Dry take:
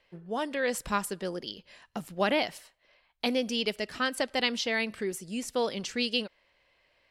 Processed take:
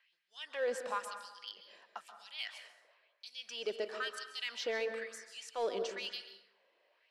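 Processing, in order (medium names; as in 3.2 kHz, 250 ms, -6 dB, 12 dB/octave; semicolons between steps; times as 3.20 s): low-pass 8.1 kHz 12 dB/octave; treble shelf 3.6 kHz -4.5 dB; band-stop 2.1 kHz, Q 15; peak limiter -24 dBFS, peak gain reduction 9.5 dB; LFO high-pass sine 1 Hz 370–5300 Hz; in parallel at -8.5 dB: hard clipper -30 dBFS, distortion -8 dB; on the sum: plate-style reverb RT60 1 s, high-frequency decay 0.45×, pre-delay 120 ms, DRR 7.5 dB; trim -8.5 dB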